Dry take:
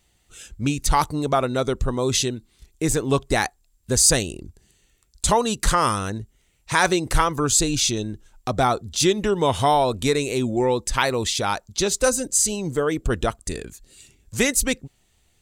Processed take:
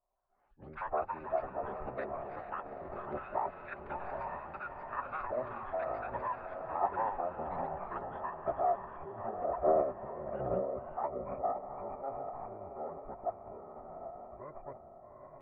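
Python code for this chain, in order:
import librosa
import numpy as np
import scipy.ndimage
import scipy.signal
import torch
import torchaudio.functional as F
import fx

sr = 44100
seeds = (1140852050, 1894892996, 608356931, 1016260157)

p1 = fx.tracing_dist(x, sr, depth_ms=0.11)
p2 = fx.over_compress(p1, sr, threshold_db=-21.0, ratio=-0.5)
p3 = p1 + F.gain(torch.from_numpy(p2), -2.0).numpy()
p4 = fx.formant_cascade(p3, sr, vowel='a')
p5 = p4 + fx.echo_diffused(p4, sr, ms=812, feedback_pct=49, wet_db=-5.5, dry=0)
p6 = fx.pitch_keep_formants(p5, sr, semitones=-11.0)
p7 = fx.echo_pitch(p6, sr, ms=153, semitones=6, count=2, db_per_echo=-6.0)
y = F.gain(torch.from_numpy(p7), -6.0).numpy()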